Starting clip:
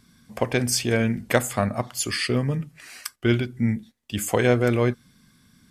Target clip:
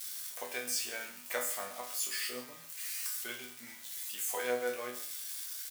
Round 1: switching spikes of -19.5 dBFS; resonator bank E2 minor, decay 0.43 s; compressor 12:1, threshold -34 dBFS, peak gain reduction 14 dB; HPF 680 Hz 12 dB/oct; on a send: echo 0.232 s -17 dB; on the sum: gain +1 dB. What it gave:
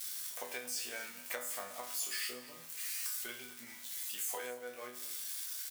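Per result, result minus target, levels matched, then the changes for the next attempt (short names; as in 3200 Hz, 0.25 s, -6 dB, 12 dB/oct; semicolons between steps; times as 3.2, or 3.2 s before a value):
echo 96 ms late; compressor: peak gain reduction +14 dB
change: echo 0.136 s -17 dB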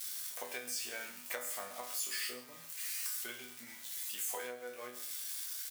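compressor: peak gain reduction +14 dB
remove: compressor 12:1, threshold -34 dBFS, peak gain reduction 14 dB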